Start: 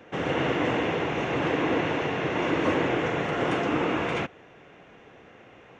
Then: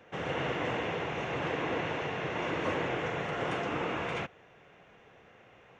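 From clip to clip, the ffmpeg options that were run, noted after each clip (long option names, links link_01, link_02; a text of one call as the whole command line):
ffmpeg -i in.wav -af "equalizer=frequency=290:width_type=o:width=0.75:gain=-6.5,volume=-5.5dB" out.wav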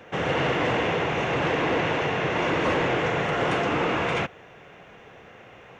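ffmpeg -i in.wav -af "aeval=exprs='0.126*sin(PI/2*1.78*val(0)/0.126)':channel_layout=same,volume=1dB" out.wav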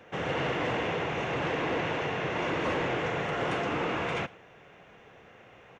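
ffmpeg -i in.wav -af "aecho=1:1:108:0.0668,volume=-6dB" out.wav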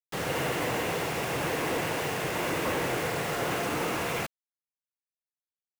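ffmpeg -i in.wav -af "acrusher=bits=5:mix=0:aa=0.000001" out.wav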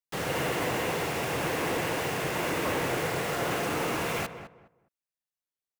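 ffmpeg -i in.wav -filter_complex "[0:a]asplit=2[link_01][link_02];[link_02]adelay=207,lowpass=frequency=1600:poles=1,volume=-10dB,asplit=2[link_03][link_04];[link_04]adelay=207,lowpass=frequency=1600:poles=1,volume=0.24,asplit=2[link_05][link_06];[link_06]adelay=207,lowpass=frequency=1600:poles=1,volume=0.24[link_07];[link_01][link_03][link_05][link_07]amix=inputs=4:normalize=0" out.wav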